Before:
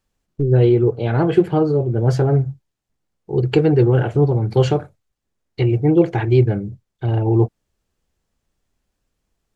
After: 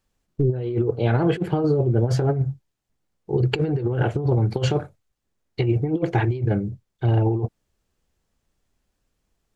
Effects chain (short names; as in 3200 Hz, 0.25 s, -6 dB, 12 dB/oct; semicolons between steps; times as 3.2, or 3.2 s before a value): negative-ratio compressor -17 dBFS, ratio -0.5; gain -2.5 dB